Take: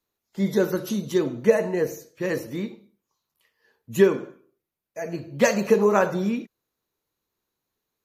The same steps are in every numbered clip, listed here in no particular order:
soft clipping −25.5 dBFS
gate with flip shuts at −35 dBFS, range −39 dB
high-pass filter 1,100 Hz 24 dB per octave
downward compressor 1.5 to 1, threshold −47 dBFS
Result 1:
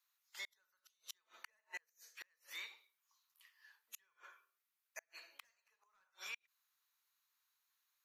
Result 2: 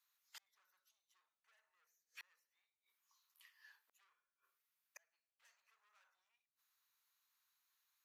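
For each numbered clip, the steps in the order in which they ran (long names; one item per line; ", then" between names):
high-pass filter, then soft clipping, then downward compressor, then gate with flip
soft clipping, then gate with flip, then high-pass filter, then downward compressor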